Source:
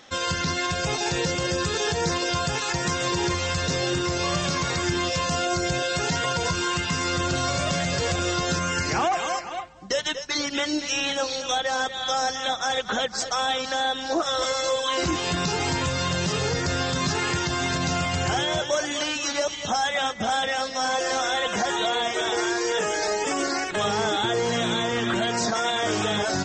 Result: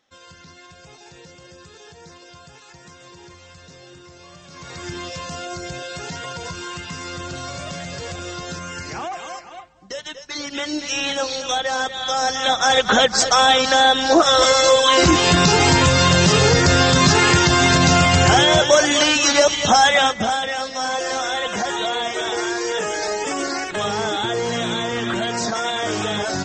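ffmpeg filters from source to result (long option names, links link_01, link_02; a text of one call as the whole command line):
ffmpeg -i in.wav -af "volume=11dB,afade=type=in:start_time=4.48:duration=0.43:silence=0.223872,afade=type=in:start_time=10.16:duration=0.93:silence=0.354813,afade=type=in:start_time=12.14:duration=0.75:silence=0.398107,afade=type=out:start_time=19.89:duration=0.5:silence=0.334965" out.wav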